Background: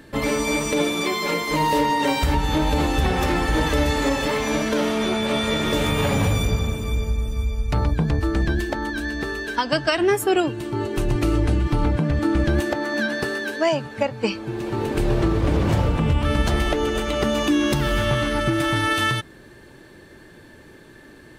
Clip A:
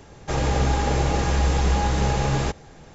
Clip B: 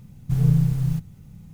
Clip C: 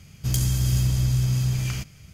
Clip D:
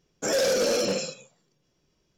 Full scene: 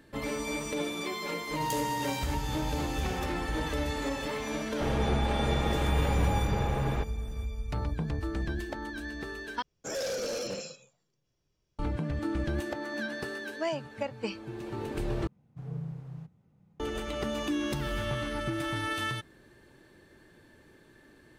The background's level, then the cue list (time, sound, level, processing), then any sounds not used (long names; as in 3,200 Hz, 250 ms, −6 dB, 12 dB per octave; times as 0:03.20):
background −11.5 dB
0:01.36: mix in C −10 dB + high-pass filter 230 Hz
0:04.52: mix in A −7.5 dB + low-pass filter 2,200 Hz
0:09.62: overwrite with D −9.5 dB + low shelf with overshoot 140 Hz +6 dB, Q 1.5
0:15.27: overwrite with B −9 dB + resonant band-pass 650 Hz, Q 0.73